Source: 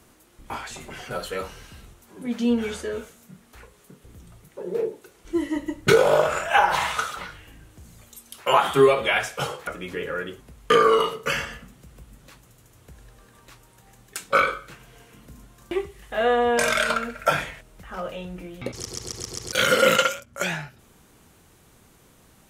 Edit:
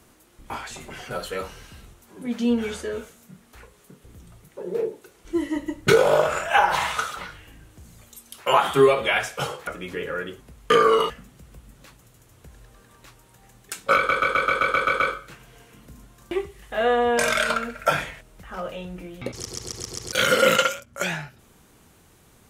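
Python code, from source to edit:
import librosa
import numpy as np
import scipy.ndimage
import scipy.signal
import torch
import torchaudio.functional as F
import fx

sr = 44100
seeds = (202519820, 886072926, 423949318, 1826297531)

y = fx.edit(x, sr, fx.cut(start_s=11.1, length_s=0.44),
    fx.stutter(start_s=14.4, slice_s=0.13, count=9), tone=tone)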